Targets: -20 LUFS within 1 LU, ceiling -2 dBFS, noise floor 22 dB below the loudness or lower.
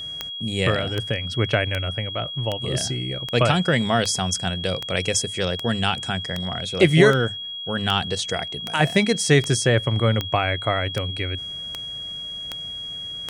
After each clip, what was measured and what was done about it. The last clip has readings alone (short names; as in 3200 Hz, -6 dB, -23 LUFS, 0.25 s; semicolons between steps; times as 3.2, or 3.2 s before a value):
clicks 18; steady tone 3300 Hz; tone level -30 dBFS; loudness -22.5 LUFS; peak -3.0 dBFS; loudness target -20.0 LUFS
-> de-click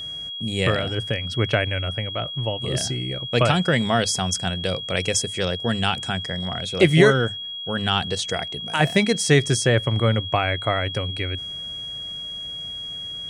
clicks 0; steady tone 3300 Hz; tone level -30 dBFS
-> notch 3300 Hz, Q 30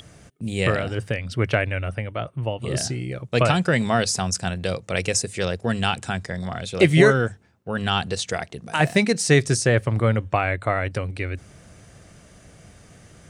steady tone none; loudness -22.5 LUFS; peak -3.5 dBFS; loudness target -20.0 LUFS
-> gain +2.5 dB; limiter -2 dBFS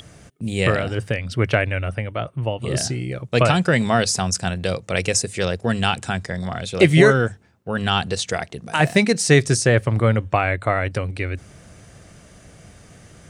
loudness -20.5 LUFS; peak -2.0 dBFS; noise floor -49 dBFS